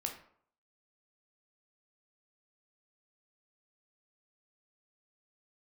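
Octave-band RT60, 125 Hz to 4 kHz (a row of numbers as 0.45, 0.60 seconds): 0.55, 0.55, 0.60, 0.60, 0.45, 0.35 seconds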